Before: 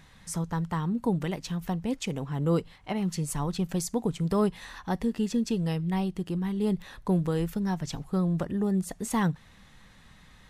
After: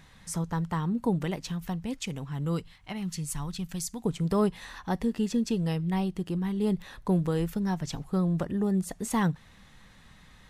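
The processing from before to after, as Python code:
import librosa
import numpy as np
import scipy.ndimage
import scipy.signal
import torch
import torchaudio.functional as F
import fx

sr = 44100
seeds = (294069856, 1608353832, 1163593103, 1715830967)

y = fx.peak_eq(x, sr, hz=480.0, db=fx.line((1.51, -4.5), (4.04, -15.0)), octaves=2.3, at=(1.51, 4.04), fade=0.02)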